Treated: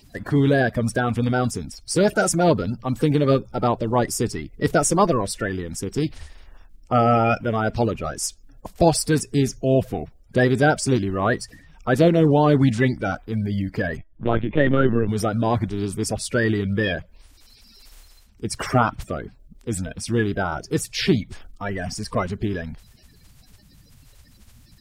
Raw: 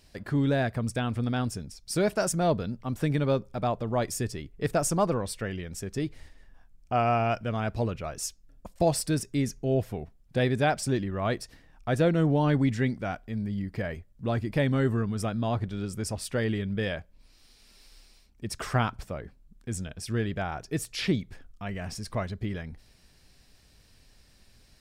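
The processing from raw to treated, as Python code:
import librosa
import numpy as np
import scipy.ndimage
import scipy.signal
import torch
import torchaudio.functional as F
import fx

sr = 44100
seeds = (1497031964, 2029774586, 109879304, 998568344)

y = fx.spec_quant(x, sr, step_db=30)
y = fx.lpc_vocoder(y, sr, seeds[0], excitation='pitch_kept', order=16, at=(13.97, 15.09))
y = y * 10.0 ** (8.0 / 20.0)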